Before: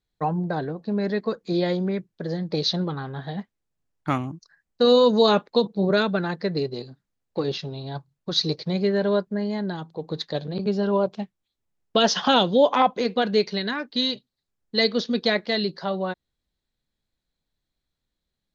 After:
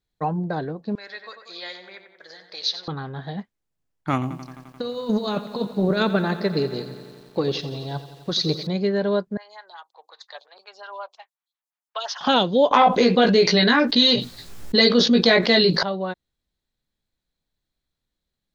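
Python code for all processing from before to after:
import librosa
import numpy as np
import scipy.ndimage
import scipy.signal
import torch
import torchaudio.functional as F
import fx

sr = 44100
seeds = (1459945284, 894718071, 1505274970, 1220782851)

y = fx.chain(x, sr, fx.highpass(hz=1400.0, slope=12),
    fx.echo_tape(ms=92, feedback_pct=66, wet_db=-7.0, lp_hz=2800.0, drive_db=7.0, wow_cents=27), at=(0.95, 2.88))
y = fx.chain(y, sr, fx.over_compress(threshold_db=-21.0, ratio=-0.5),
    fx.echo_crushed(ms=87, feedback_pct=80, bits=8, wet_db=-14.0), at=(4.13, 8.67))
y = fx.chain(y, sr, fx.highpass(hz=860.0, slope=24),
    fx.stagger_phaser(hz=5.6), at=(9.37, 12.21))
y = fx.chain(y, sr, fx.doubler(ms=17.0, db=-3),
    fx.env_flatten(amount_pct=70), at=(12.71, 15.83))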